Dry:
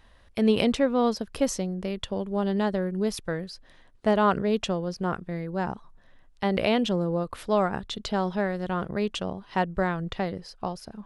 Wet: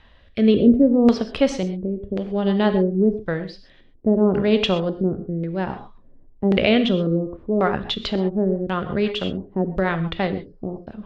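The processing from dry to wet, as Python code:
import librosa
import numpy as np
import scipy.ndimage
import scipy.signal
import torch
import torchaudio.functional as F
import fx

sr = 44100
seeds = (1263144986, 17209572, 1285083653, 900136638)

y = fx.filter_lfo_lowpass(x, sr, shape='square', hz=0.92, low_hz=360.0, high_hz=3300.0, q=1.6)
y = fx.rev_gated(y, sr, seeds[0], gate_ms=150, shape='flat', drr_db=8.0)
y = fx.rotary_switch(y, sr, hz=0.6, then_hz=6.0, switch_at_s=7.04)
y = y * librosa.db_to_amplitude(7.0)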